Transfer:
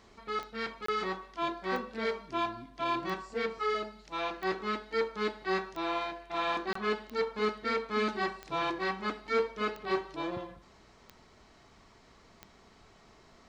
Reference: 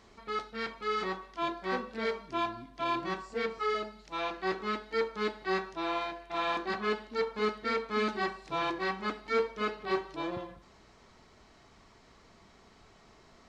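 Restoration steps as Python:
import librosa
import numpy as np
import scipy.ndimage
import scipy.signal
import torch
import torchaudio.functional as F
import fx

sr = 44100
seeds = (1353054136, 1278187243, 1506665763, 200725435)

y = fx.fix_declick_ar(x, sr, threshold=10.0)
y = fx.fix_interpolate(y, sr, at_s=(0.86, 6.73), length_ms=24.0)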